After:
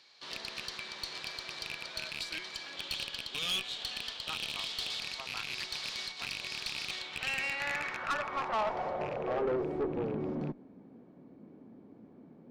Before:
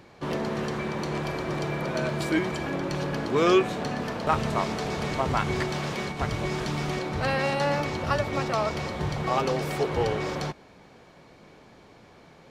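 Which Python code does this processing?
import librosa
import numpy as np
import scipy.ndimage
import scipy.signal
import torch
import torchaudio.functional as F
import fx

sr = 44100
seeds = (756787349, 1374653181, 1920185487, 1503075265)

y = fx.rattle_buzz(x, sr, strikes_db=-28.0, level_db=-16.0)
y = fx.peak_eq(y, sr, hz=3200.0, db=11.0, octaves=0.47, at=(2.77, 5.0))
y = fx.rider(y, sr, range_db=3, speed_s=0.5)
y = fx.filter_sweep_bandpass(y, sr, from_hz=4300.0, to_hz=250.0, start_s=6.83, end_s=10.06, q=2.9)
y = fx.tube_stage(y, sr, drive_db=32.0, bias=0.4)
y = y * librosa.db_to_amplitude(5.0)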